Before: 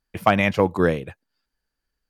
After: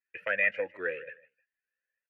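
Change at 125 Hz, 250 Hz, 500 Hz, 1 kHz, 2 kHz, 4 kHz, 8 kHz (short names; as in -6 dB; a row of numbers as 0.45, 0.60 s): -34.0 dB, -27.5 dB, -13.0 dB, -21.5 dB, -2.5 dB, -17.0 dB, n/a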